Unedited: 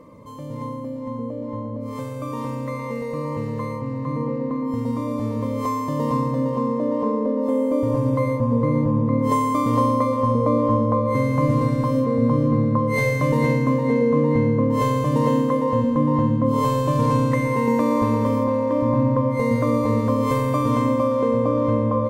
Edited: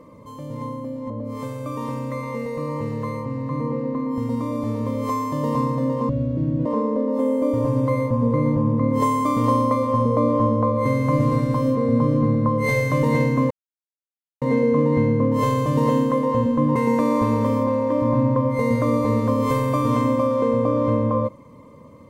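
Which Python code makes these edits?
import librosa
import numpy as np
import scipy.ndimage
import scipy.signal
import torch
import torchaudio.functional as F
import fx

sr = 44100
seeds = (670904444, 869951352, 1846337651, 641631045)

y = fx.edit(x, sr, fx.cut(start_s=1.1, length_s=0.56),
    fx.speed_span(start_s=6.65, length_s=0.3, speed=0.53),
    fx.insert_silence(at_s=13.8, length_s=0.91),
    fx.cut(start_s=16.14, length_s=1.42), tone=tone)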